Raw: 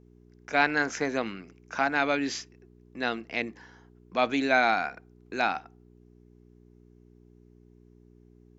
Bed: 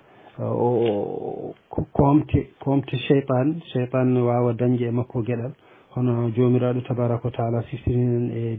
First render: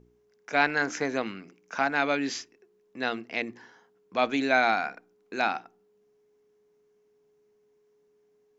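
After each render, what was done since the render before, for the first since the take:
hum removal 60 Hz, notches 6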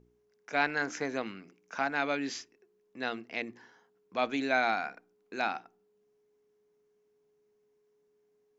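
level −5 dB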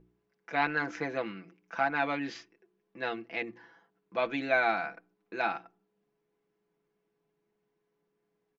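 low-pass filter 3,200 Hz 12 dB per octave
comb filter 6 ms, depth 67%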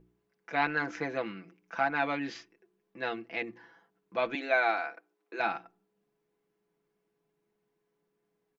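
0:04.35–0:05.40: high-pass filter 310 Hz 24 dB per octave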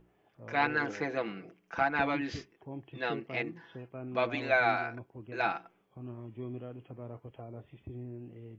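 mix in bed −22 dB

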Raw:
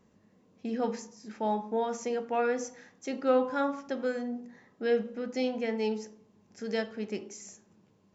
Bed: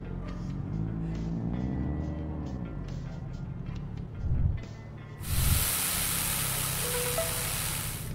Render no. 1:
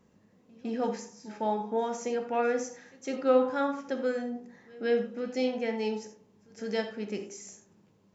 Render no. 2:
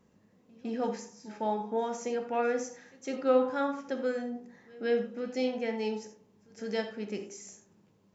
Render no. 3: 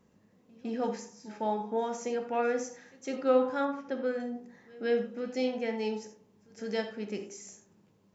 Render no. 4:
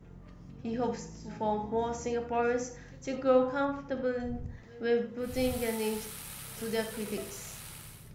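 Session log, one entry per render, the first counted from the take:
echo ahead of the sound 156 ms −23 dB; reverb whose tail is shaped and stops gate 110 ms flat, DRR 7 dB
level −1.5 dB
0:03.65–0:04.20: high-frequency loss of the air 130 metres
mix in bed −14 dB

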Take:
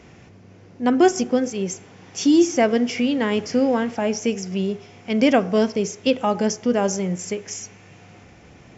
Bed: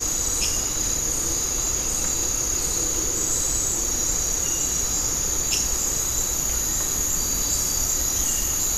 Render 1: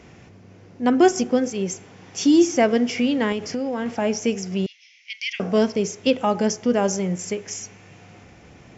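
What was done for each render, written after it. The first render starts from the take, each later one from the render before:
0:03.32–0:03.86: downward compressor, threshold −22 dBFS
0:04.66–0:05.40: Chebyshev band-pass filter 2,000–6,200 Hz, order 4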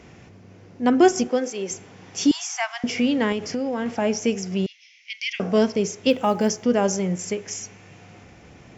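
0:01.28–0:01.71: high-pass filter 340 Hz
0:02.31–0:02.84: Butterworth high-pass 730 Hz 96 dB per octave
0:06.10–0:06.63: log-companded quantiser 8 bits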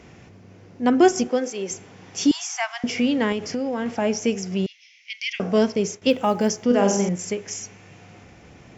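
0:05.23–0:06.02: downward expander −36 dBFS
0:06.66–0:07.09: flutter between parallel walls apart 7.7 metres, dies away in 0.59 s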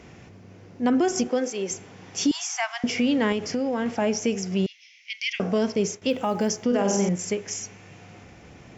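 brickwall limiter −14 dBFS, peak gain reduction 9.5 dB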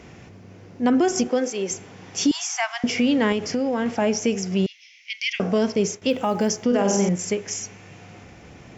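level +2.5 dB

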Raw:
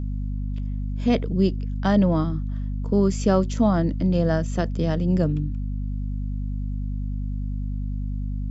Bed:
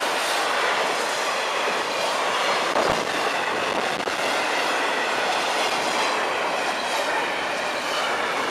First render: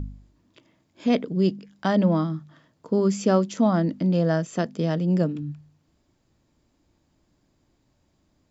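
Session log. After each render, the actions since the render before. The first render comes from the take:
hum removal 50 Hz, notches 5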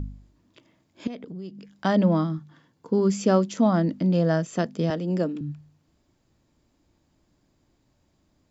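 0:01.07–0:01.71: downward compressor 5 to 1, threshold −35 dBFS
0:02.38–0:03.10: notch comb filter 630 Hz
0:04.90–0:05.41: high-pass filter 200 Hz 24 dB per octave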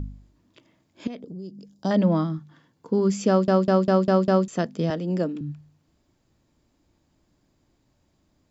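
0:01.20–0:01.91: drawn EQ curve 560 Hz 0 dB, 2,000 Hz −20 dB, 5,000 Hz +1 dB
0:03.28: stutter in place 0.20 s, 6 plays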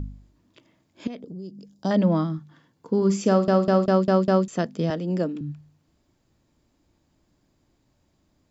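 0:02.97–0:03.86: flutter between parallel walls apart 8.8 metres, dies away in 0.26 s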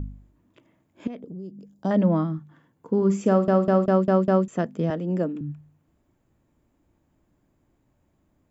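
parametric band 4,700 Hz −14 dB 1.1 octaves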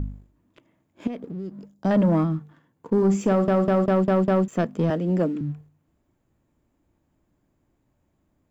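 brickwall limiter −12.5 dBFS, peak gain reduction 4.5 dB
leveller curve on the samples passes 1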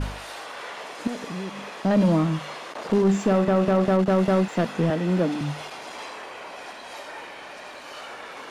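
mix in bed −14.5 dB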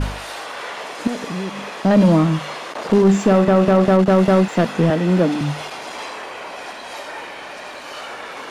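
level +6.5 dB

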